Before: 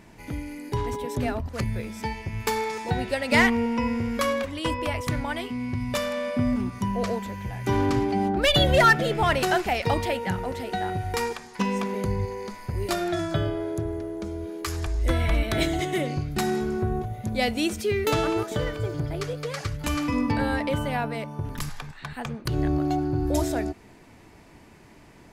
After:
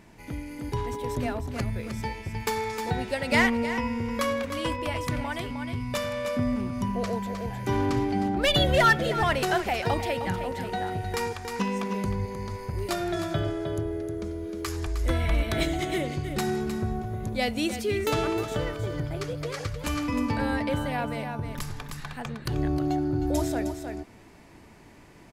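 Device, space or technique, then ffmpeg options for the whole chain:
ducked delay: -filter_complex "[0:a]asplit=3[a][b][c];[b]adelay=310,volume=-2.5dB[d];[c]apad=whole_len=1130361[e];[d][e]sidechaincompress=threshold=-32dB:ratio=3:attack=16:release=562[f];[a][f]amix=inputs=2:normalize=0,volume=-2.5dB"

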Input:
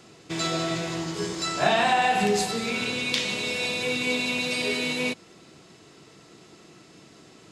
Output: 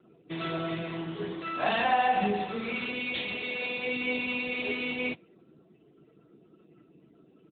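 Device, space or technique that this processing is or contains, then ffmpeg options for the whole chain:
mobile call with aggressive noise cancelling: -filter_complex "[0:a]acrossover=split=8200[a][b];[b]acompressor=threshold=-53dB:ratio=4:attack=1:release=60[c];[a][c]amix=inputs=2:normalize=0,highshelf=f=2.5k:g=2.5,asplit=3[d][e][f];[d]afade=t=out:st=1.48:d=0.02[g];[e]aecho=1:1:3.8:0.35,afade=t=in:st=1.48:d=0.02,afade=t=out:st=2.41:d=0.02[h];[f]afade=t=in:st=2.41:d=0.02[i];[g][h][i]amix=inputs=3:normalize=0,highpass=f=120:w=0.5412,highpass=f=120:w=1.3066,afftdn=nr=25:nf=-48,volume=-4dB" -ar 8000 -c:a libopencore_amrnb -b:a 10200

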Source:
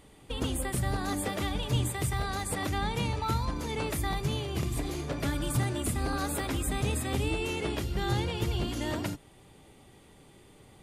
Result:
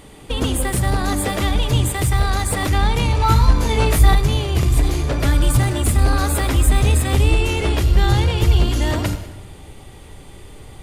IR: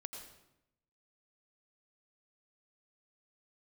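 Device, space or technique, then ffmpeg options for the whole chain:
saturated reverb return: -filter_complex "[0:a]asplit=2[a][b];[1:a]atrim=start_sample=2205[c];[b][c]afir=irnorm=-1:irlink=0,asoftclip=type=tanh:threshold=-37.5dB,volume=1.5dB[d];[a][d]amix=inputs=2:normalize=0,asubboost=boost=4:cutoff=86,asettb=1/sr,asplit=3[e][f][g];[e]atrim=end=3.184[h];[f]atrim=start=3.18:end=4.15,asetpts=PTS-STARTPTS,afade=t=in:d=0.004:c=qsin,afade=t=out:st=0.966:d=0.004:c=qsin,asplit=2[i][j];[j]adelay=18,volume=-2dB[k];[i][k]amix=inputs=2:normalize=0,atrim=end_sample=42777[l];[g]atrim=start=4.146[m];[h][l]acrossfade=d=0.004:c1=hsin:c2=qsin[n];[n][m]acrossfade=d=0.004:c1=qsin:c2=hsin,volume=8.5dB"

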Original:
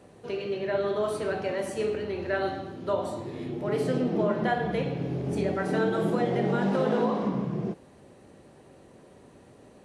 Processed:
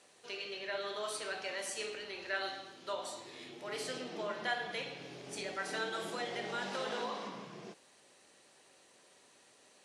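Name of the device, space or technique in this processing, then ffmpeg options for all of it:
piezo pickup straight into a mixer: -af "lowpass=6.5k,aderivative,volume=9dB"

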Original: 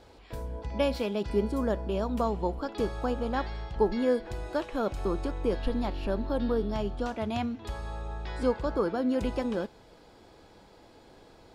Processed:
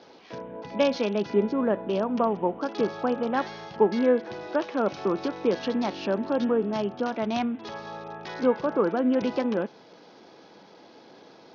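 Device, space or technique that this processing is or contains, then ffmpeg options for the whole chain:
Bluetooth headset: -filter_complex "[0:a]asplit=3[a][b][c];[a]afade=t=out:st=4.86:d=0.02[d];[b]highshelf=f=2.5k:g=4.5,afade=t=in:st=4.86:d=0.02,afade=t=out:st=6.43:d=0.02[e];[c]afade=t=in:st=6.43:d=0.02[f];[d][e][f]amix=inputs=3:normalize=0,highpass=f=160:w=0.5412,highpass=f=160:w=1.3066,aresample=16000,aresample=44100,volume=4.5dB" -ar 48000 -c:a sbc -b:a 64k

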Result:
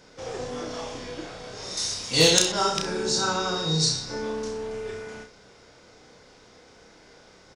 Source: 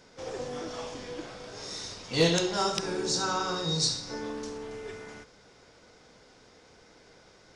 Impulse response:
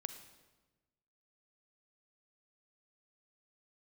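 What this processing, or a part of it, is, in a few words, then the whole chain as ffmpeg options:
slapback doubling: -filter_complex "[0:a]asplit=3[a][b][c];[b]adelay=32,volume=-4.5dB[d];[c]adelay=64,volume=-11.5dB[e];[a][d][e]amix=inputs=3:normalize=0,asettb=1/sr,asplit=3[f][g][h];[f]atrim=end=1.774[i];[g]atrim=start=1.77:end=2.52,asetpts=PTS-STARTPTS,afade=t=in:d=0.004:c=qsin,afade=t=out:st=0.746:d=0.004:c=qsin,aemphasis=mode=production:type=75fm[j];[h]atrim=start=2.516[k];[i][j]acrossfade=d=0.004:c1=hsin:c2=qsin[l];[l][k]acrossfade=d=0.004:c1=qsin:c2=hsin,volume=2.5dB"

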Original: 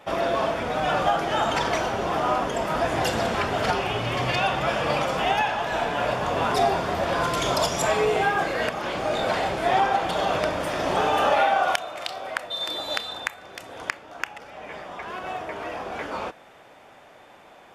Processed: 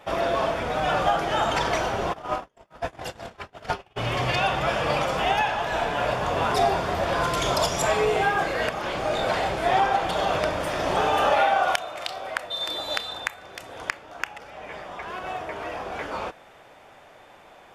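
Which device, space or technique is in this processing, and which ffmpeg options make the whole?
low shelf boost with a cut just above: -filter_complex "[0:a]asplit=3[a][b][c];[a]afade=t=out:st=2.12:d=0.02[d];[b]agate=range=-45dB:threshold=-21dB:ratio=16:detection=peak,afade=t=in:st=2.12:d=0.02,afade=t=out:st=3.96:d=0.02[e];[c]afade=t=in:st=3.96:d=0.02[f];[d][e][f]amix=inputs=3:normalize=0,lowshelf=f=61:g=7,equalizer=f=240:t=o:w=0.86:g=-3"

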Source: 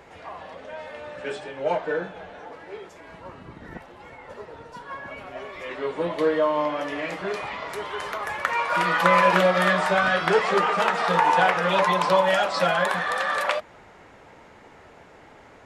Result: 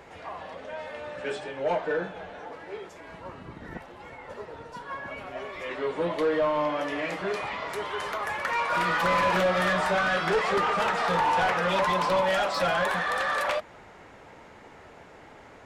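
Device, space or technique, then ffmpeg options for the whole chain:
saturation between pre-emphasis and de-emphasis: -af "highshelf=f=2.9k:g=11,asoftclip=type=tanh:threshold=-18.5dB,highshelf=f=2.9k:g=-11"

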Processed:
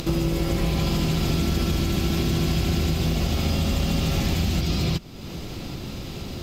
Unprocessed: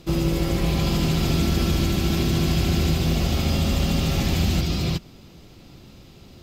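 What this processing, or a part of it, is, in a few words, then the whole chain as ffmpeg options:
upward and downward compression: -af "acompressor=mode=upward:threshold=-25dB:ratio=2.5,acompressor=threshold=-22dB:ratio=6,volume=3dB"

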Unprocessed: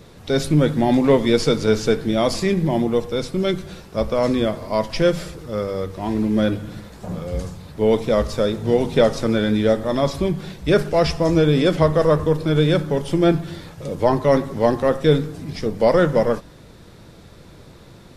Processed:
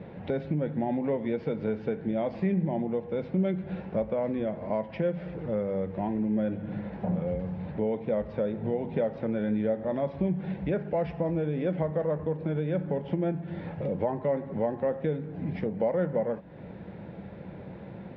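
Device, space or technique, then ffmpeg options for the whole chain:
bass amplifier: -af "acompressor=threshold=-31dB:ratio=4,highpass=79,equalizer=f=190:t=q:w=4:g=9,equalizer=f=550:t=q:w=4:g=5,equalizer=f=810:t=q:w=4:g=5,equalizer=f=1.2k:t=q:w=4:g=-9,lowpass=f=2.4k:w=0.5412,lowpass=f=2.4k:w=1.3066"

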